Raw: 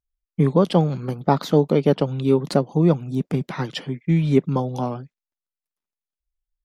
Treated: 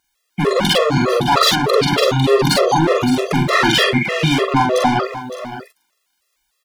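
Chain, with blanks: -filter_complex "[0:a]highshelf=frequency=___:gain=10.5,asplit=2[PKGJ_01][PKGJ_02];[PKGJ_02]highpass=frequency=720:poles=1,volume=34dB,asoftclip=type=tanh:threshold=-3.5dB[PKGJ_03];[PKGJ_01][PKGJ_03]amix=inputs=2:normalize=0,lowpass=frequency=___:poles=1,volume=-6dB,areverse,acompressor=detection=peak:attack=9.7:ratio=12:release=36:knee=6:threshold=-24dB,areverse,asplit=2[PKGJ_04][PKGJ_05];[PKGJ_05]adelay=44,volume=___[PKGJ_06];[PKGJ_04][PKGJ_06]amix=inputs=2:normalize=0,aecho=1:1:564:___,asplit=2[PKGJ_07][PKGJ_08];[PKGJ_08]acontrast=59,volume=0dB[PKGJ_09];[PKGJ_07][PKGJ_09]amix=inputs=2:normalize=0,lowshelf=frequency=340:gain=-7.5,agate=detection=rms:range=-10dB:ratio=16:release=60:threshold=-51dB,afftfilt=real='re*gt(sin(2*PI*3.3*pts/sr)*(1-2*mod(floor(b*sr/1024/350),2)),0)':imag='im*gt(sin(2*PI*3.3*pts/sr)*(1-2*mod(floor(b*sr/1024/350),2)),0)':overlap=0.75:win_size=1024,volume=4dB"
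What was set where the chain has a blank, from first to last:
3.5k, 1.8k, -2.5dB, 0.237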